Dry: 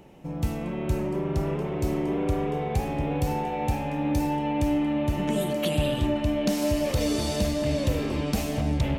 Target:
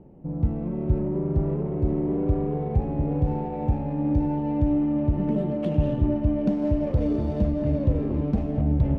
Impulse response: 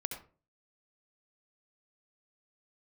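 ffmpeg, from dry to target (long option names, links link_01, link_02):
-af "adynamicsmooth=sensitivity=1.5:basefreq=1300,tiltshelf=frequency=770:gain=8,volume=-3.5dB"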